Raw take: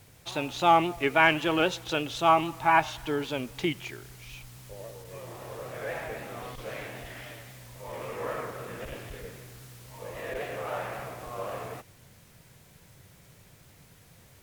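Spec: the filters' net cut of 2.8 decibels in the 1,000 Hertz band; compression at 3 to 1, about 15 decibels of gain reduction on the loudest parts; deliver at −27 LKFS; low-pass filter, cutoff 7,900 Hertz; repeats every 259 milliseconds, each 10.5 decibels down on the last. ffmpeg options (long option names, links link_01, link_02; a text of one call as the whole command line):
ffmpeg -i in.wav -af "lowpass=7900,equalizer=frequency=1000:width_type=o:gain=-3.5,acompressor=threshold=-39dB:ratio=3,aecho=1:1:259|518|777:0.299|0.0896|0.0269,volume=14dB" out.wav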